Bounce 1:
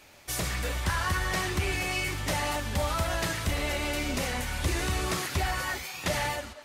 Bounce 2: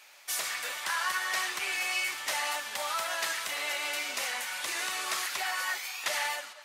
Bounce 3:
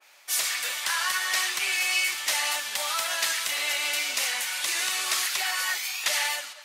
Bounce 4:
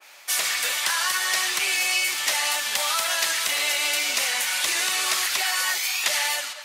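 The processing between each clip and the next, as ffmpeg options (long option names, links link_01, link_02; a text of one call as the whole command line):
ffmpeg -i in.wav -af "highpass=950,volume=1dB" out.wav
ffmpeg -i in.wav -af "adynamicequalizer=threshold=0.00501:dfrequency=1900:dqfactor=0.7:tfrequency=1900:tqfactor=0.7:attack=5:release=100:ratio=0.375:range=4:mode=boostabove:tftype=highshelf" out.wav
ffmpeg -i in.wav -filter_complex "[0:a]acrossover=split=790|3400[link_01][link_02][link_03];[link_01]acompressor=threshold=-44dB:ratio=4[link_04];[link_02]acompressor=threshold=-34dB:ratio=4[link_05];[link_03]acompressor=threshold=-32dB:ratio=4[link_06];[link_04][link_05][link_06]amix=inputs=3:normalize=0,volume=7.5dB" out.wav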